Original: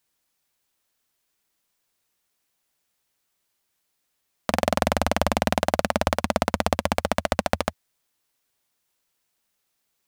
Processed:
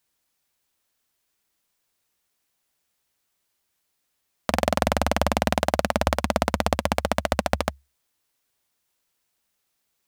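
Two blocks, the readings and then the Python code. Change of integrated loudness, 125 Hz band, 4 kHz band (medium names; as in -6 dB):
0.0 dB, +1.5 dB, 0.0 dB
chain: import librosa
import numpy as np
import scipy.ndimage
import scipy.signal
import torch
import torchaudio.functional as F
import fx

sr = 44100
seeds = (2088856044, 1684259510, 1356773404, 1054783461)

y = fx.peak_eq(x, sr, hz=69.0, db=6.5, octaves=0.24)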